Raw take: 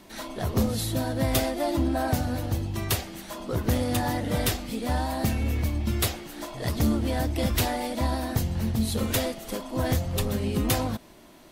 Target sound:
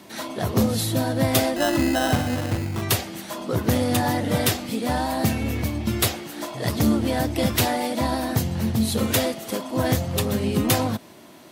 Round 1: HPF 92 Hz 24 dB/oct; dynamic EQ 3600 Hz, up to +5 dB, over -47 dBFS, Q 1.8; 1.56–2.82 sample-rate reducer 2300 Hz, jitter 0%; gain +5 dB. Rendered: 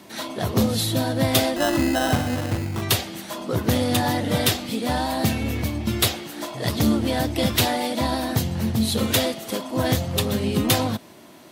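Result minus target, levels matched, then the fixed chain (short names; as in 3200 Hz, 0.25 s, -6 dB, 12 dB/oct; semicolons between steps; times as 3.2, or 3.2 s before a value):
4000 Hz band +3.0 dB
HPF 92 Hz 24 dB/oct; 1.56–2.82 sample-rate reducer 2300 Hz, jitter 0%; gain +5 dB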